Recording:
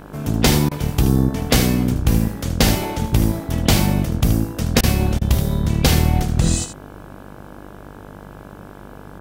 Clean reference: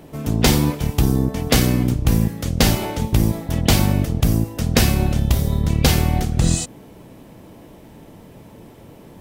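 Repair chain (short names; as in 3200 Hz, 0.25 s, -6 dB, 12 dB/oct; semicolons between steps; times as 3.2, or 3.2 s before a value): de-hum 49.7 Hz, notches 34; interpolate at 0.69/4.81/5.19, 22 ms; inverse comb 76 ms -10 dB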